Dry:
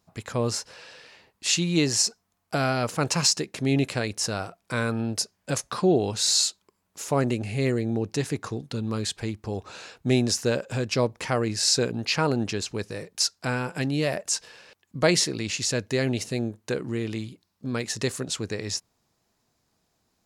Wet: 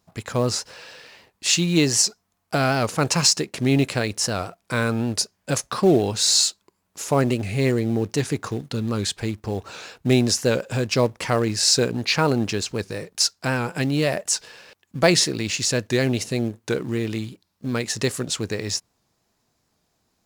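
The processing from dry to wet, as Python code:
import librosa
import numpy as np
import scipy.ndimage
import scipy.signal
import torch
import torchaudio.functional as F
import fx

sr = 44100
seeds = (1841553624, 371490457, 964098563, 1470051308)

p1 = fx.quant_companded(x, sr, bits=4)
p2 = x + (p1 * librosa.db_to_amplitude(-12.0))
p3 = fx.record_warp(p2, sr, rpm=78.0, depth_cents=100.0)
y = p3 * librosa.db_to_amplitude(2.0)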